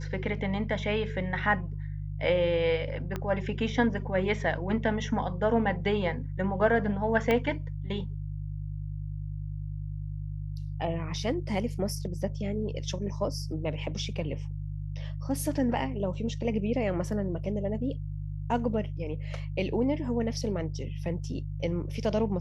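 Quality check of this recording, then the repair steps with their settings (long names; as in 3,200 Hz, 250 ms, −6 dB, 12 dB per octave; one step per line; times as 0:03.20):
mains hum 50 Hz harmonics 3 −35 dBFS
0:03.16: click −19 dBFS
0:07.31: click −14 dBFS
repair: click removal
hum removal 50 Hz, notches 3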